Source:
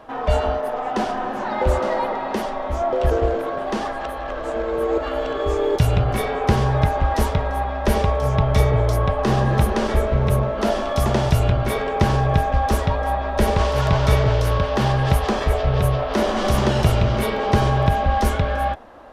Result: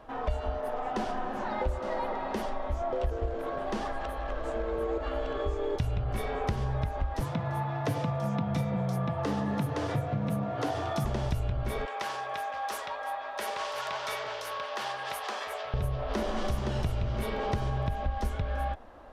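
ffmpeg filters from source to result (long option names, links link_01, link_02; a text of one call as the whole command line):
ffmpeg -i in.wav -filter_complex "[0:a]asettb=1/sr,asplit=3[link_01][link_02][link_03];[link_01]atrim=end=4.584[link_04];[link_02]atrim=start=4.58:end=6.11,asetpts=PTS-STARTPTS,afade=type=in:duration=0.004:curve=qsin,afade=type=out:start_time=1.526:duration=0.004:curve=qsin,highshelf=frequency=9800:gain=-8[link_05];[link_03]atrim=start=6.106[link_06];[link_04][link_05]acrossfade=duration=0.004:curve1=hsin:curve2=qsin[link_07];[link_07][link_06]acrossfade=duration=0.004:curve1=qsin:curve2=hsin,asettb=1/sr,asplit=3[link_08][link_09][link_10];[link_08]atrim=end=7.204[link_11];[link_09]atrim=start=7.2:end=11.05,asetpts=PTS-STARTPTS,afade=type=in:duration=0.004:curve=qsin,afade=type=out:start_time=3.846:duration=0.004:curve=qsin,afreqshift=73[link_12];[link_10]atrim=start=11.046[link_13];[link_11][link_12]acrossfade=duration=0.004:curve1=hsin:curve2=qsin[link_14];[link_14][link_13]acrossfade=duration=0.004:curve1=qsin:curve2=hsin,asettb=1/sr,asplit=3[link_15][link_16][link_17];[link_15]atrim=end=11.854[link_18];[link_16]atrim=start=11.85:end=15.74,asetpts=PTS-STARTPTS,afade=type=in:duration=0.004:curve=qsin,afade=type=out:start_time=3.886:duration=0.004:curve=qsin,highpass=840[link_19];[link_17]atrim=start=15.736[link_20];[link_18][link_19]acrossfade=duration=0.004:curve1=hsin:curve2=qsin[link_21];[link_21][link_20]acrossfade=duration=0.004:curve1=qsin:curve2=hsin,lowshelf=frequency=67:gain=12,acompressor=threshold=-19dB:ratio=5,volume=-8dB" out.wav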